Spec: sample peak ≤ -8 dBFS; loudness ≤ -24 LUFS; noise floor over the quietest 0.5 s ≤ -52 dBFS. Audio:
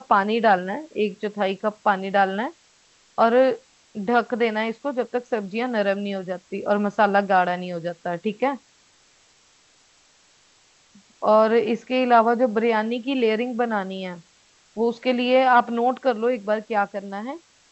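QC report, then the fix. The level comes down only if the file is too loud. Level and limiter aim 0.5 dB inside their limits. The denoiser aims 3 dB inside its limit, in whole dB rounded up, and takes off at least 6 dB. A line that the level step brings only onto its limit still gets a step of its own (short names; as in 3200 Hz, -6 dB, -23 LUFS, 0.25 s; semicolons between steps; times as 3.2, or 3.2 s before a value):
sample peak -5.5 dBFS: fail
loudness -22.5 LUFS: fail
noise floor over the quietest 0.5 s -58 dBFS: OK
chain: gain -2 dB; limiter -8.5 dBFS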